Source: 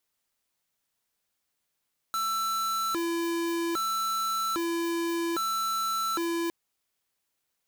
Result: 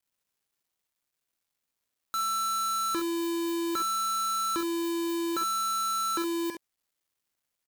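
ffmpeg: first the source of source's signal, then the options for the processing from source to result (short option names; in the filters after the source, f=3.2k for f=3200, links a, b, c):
-f lavfi -i "aevalsrc='0.0355*(2*lt(mod((833.5*t+496.5/0.62*(0.5-abs(mod(0.62*t,1)-0.5))),1),0.5)-1)':d=4.36:s=44100"
-filter_complex "[0:a]equalizer=f=720:w=6:g=-9.5,acrusher=bits=11:mix=0:aa=0.000001,asplit=2[a][b];[b]aecho=0:1:49|68:0.316|0.335[c];[a][c]amix=inputs=2:normalize=0"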